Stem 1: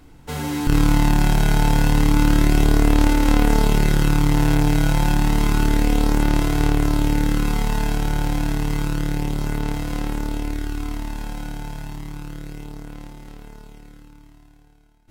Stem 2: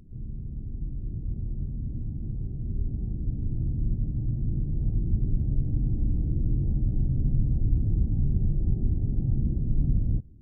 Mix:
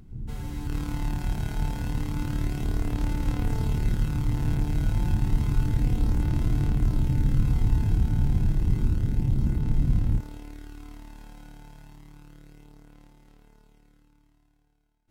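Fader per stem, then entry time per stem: -16.0, +1.5 dB; 0.00, 0.00 s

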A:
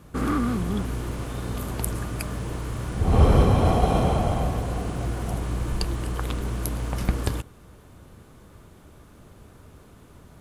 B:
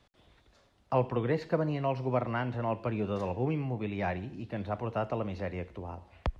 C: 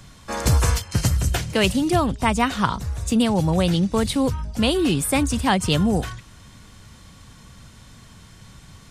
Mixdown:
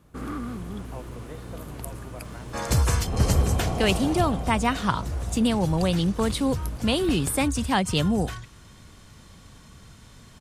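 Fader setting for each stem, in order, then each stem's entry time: -8.5, -13.5, -3.5 dB; 0.00, 0.00, 2.25 s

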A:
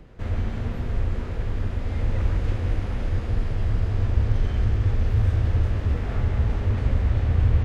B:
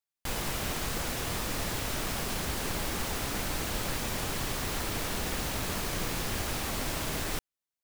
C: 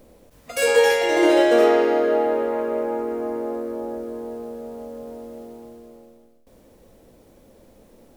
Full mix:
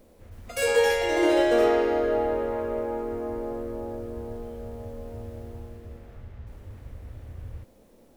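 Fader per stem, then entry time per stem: -20.0 dB, off, -5.0 dB; 0.00 s, off, 0.00 s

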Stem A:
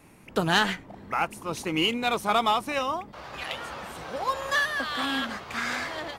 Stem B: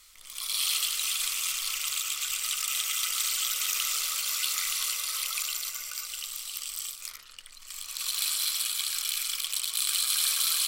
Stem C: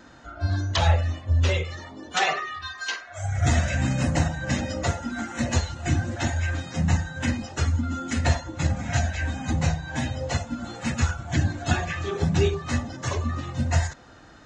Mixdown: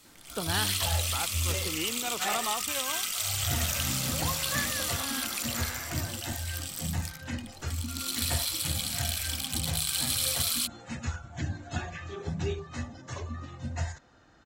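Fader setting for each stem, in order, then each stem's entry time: -9.5, -2.5, -10.5 dB; 0.00, 0.00, 0.05 s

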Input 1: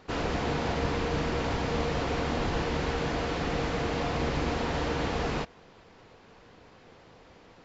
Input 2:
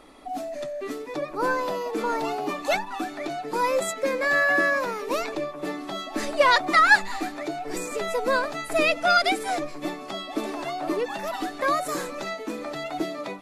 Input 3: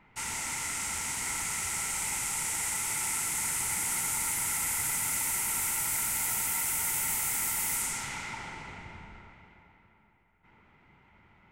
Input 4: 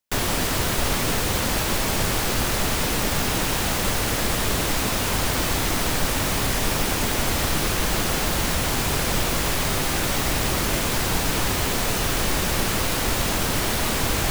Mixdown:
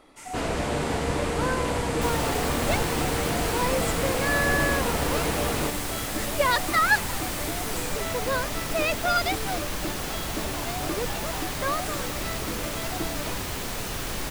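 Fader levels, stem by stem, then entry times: +2.0, -4.5, -9.0, -8.5 dB; 0.25, 0.00, 0.00, 1.90 s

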